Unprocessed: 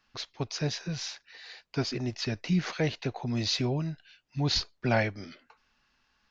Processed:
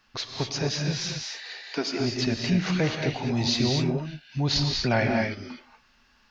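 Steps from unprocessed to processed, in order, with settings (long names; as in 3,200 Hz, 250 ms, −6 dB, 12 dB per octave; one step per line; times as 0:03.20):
0:01.12–0:01.99: high-pass filter 110 Hz → 300 Hz 24 dB per octave
in parallel at +1 dB: downward compressor, threshold −37 dBFS, peak gain reduction 15.5 dB
on the sum: reverb whose tail is shaped and stops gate 270 ms rising, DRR 1.5 dB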